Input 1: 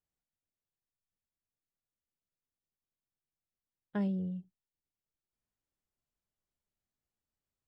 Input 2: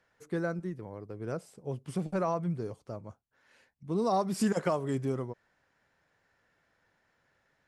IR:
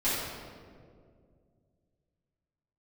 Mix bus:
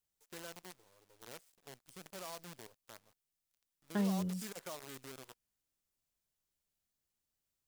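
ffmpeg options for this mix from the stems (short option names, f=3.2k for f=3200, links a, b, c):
-filter_complex "[0:a]volume=-1dB[a];[1:a]acrusher=bits=6:dc=4:mix=0:aa=0.000001,lowshelf=f=240:g=-10.5,volume=-17dB[b];[a][b]amix=inputs=2:normalize=0,highshelf=f=3.1k:g=9"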